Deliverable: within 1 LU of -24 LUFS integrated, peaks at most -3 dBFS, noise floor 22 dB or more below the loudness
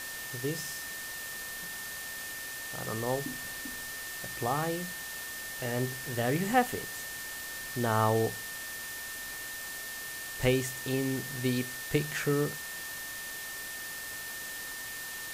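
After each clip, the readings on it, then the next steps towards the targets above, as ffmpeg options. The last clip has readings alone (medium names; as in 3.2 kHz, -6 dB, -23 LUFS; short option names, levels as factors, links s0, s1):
steady tone 1.8 kHz; tone level -41 dBFS; noise floor -40 dBFS; noise floor target -56 dBFS; loudness -33.5 LUFS; peak level -12.5 dBFS; loudness target -24.0 LUFS
-> -af "bandreject=f=1800:w=30"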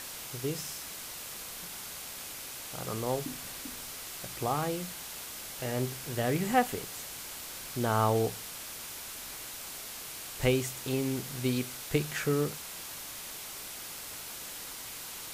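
steady tone not found; noise floor -43 dBFS; noise floor target -57 dBFS
-> -af "afftdn=nr=14:nf=-43"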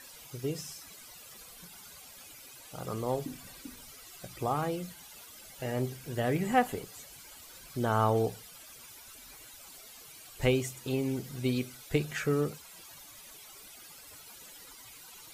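noise floor -51 dBFS; noise floor target -55 dBFS
-> -af "afftdn=nr=6:nf=-51"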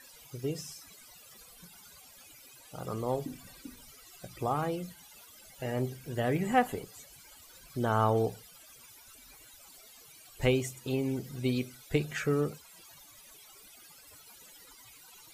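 noise floor -55 dBFS; loudness -32.5 LUFS; peak level -13.0 dBFS; loudness target -24.0 LUFS
-> -af "volume=2.66"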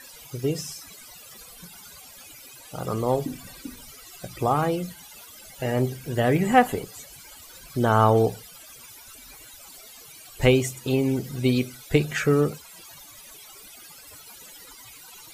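loudness -24.0 LUFS; peak level -4.5 dBFS; noise floor -47 dBFS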